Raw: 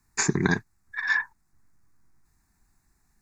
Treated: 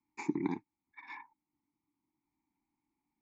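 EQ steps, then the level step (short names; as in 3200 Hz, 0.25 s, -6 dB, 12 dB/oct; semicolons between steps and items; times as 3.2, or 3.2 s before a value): vowel filter u; +1.0 dB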